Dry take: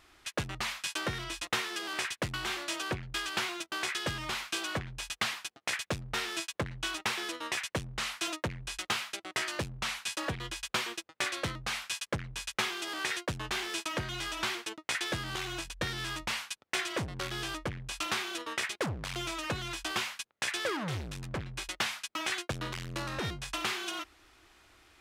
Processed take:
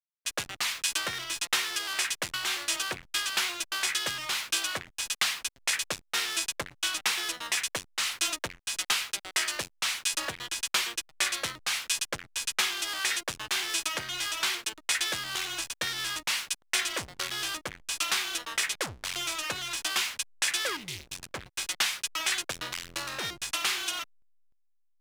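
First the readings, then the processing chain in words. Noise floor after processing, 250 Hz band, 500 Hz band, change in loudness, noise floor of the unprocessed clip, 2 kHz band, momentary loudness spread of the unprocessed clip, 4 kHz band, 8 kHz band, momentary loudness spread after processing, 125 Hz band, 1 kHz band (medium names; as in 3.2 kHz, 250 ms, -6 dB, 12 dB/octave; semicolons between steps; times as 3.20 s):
-68 dBFS, -7.0 dB, -3.5 dB, +5.0 dB, -70 dBFS, +3.5 dB, 4 LU, +6.0 dB, +9.5 dB, 6 LU, -11.0 dB, +0.5 dB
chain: tilt EQ +3.5 dB/octave; spectral selection erased 20.76–21.15 s, 410–1900 Hz; hysteresis with a dead band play -38 dBFS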